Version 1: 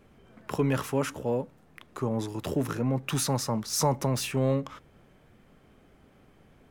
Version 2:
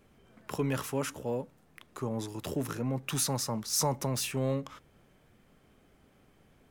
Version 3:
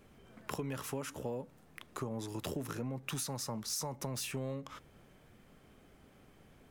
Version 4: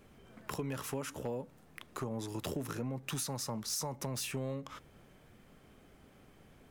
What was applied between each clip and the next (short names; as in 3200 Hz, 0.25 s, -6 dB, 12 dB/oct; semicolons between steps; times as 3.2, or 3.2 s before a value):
high shelf 3700 Hz +6.5 dB; gain -5 dB
compressor 12:1, threshold -37 dBFS, peak gain reduction 13.5 dB; gain +2 dB
wavefolder -28.5 dBFS; gain +1 dB